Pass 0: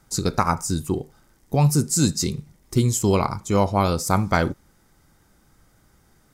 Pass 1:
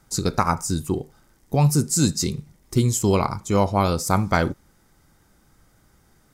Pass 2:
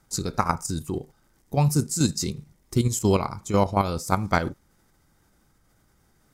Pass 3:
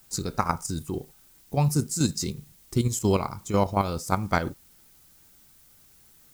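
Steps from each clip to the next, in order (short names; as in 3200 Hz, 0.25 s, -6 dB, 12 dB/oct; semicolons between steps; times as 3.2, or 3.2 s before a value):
nothing audible
level quantiser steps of 9 dB
added noise blue -55 dBFS; gain -2 dB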